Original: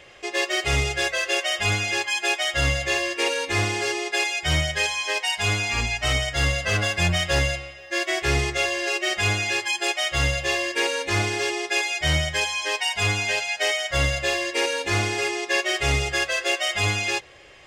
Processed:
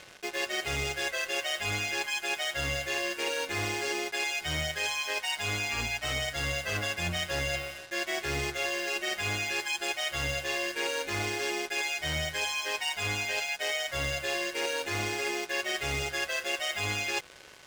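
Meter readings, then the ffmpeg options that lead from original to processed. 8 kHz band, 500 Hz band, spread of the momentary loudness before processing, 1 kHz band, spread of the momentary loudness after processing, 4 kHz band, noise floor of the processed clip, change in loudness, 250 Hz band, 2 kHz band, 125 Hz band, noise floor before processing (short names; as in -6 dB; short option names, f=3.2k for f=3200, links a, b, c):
-7.0 dB, -7.5 dB, 2 LU, -7.5 dB, 1 LU, -7.5 dB, -46 dBFS, -7.5 dB, -8.0 dB, -7.5 dB, -12.0 dB, -41 dBFS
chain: -af "lowshelf=f=83:g=-10,areverse,acompressor=threshold=-29dB:ratio=6,areverse,aeval=exprs='val(0)+0.00224*sin(2*PI*1500*n/s)':c=same,acrusher=bits=6:mix=0:aa=0.5,tremolo=f=150:d=0.333,volume=1.5dB"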